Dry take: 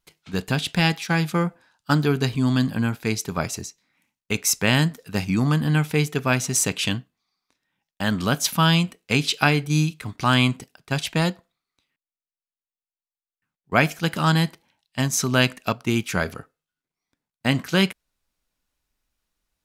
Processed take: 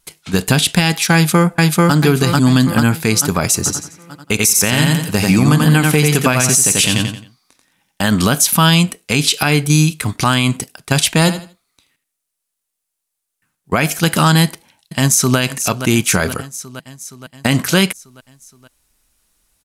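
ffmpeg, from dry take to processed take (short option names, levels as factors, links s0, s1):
-filter_complex "[0:a]asplit=2[s0][s1];[s1]afade=t=in:st=1.14:d=0.01,afade=t=out:st=1.95:d=0.01,aecho=0:1:440|880|1320|1760|2200|2640:0.891251|0.401063|0.180478|0.0812152|0.0365469|0.0164461[s2];[s0][s2]amix=inputs=2:normalize=0,asettb=1/sr,asplit=3[s3][s4][s5];[s3]atrim=end=3.574[s6];[s4]atrim=start=3.57:end=8.04,asetpts=PTS-STARTPTS,afade=t=in:d=0.004:c=qsin,afade=t=out:st=4.466:d=0.004:c=qsin,aecho=1:1:88|176|264|352:0.631|0.196|0.0606|0.0188,atrim=end_sample=197127[s7];[s5]atrim=start=8.036[s8];[s6][s7]acrossfade=d=0.004:c1=hsin:c2=qsin[s9];[s9][s8]acrossfade=d=0.004:c1=qsin:c2=hsin,asettb=1/sr,asplit=3[s10][s11][s12];[s10]atrim=end=11.194[s13];[s11]atrim=start=11.19:end=13.75,asetpts=PTS-STARTPTS,afade=t=in:d=0.004:c=qsin,afade=t=out:st=2.556:d=0.004:c=qsin,aecho=1:1:79|158|237:0.2|0.0479|0.0115,atrim=end_sample=112896[s14];[s12]atrim=start=13.746[s15];[s13][s14]acrossfade=d=0.004:c1=hsin:c2=qsin[s16];[s16][s15]acrossfade=d=0.004:c1=qsin:c2=hsin,asplit=2[s17][s18];[s18]afade=t=in:st=14.44:d=0.01,afade=t=out:st=15.38:d=0.01,aecho=0:1:470|940|1410|1880|2350|2820|3290:0.158489|0.103018|0.0669617|0.0435251|0.0282913|0.0183894|0.0119531[s19];[s17][s19]amix=inputs=2:normalize=0,equalizer=f=10000:w=0.87:g=11,acompressor=threshold=0.112:ratio=6,alimiter=level_in=4.73:limit=0.891:release=50:level=0:latency=1,volume=0.891"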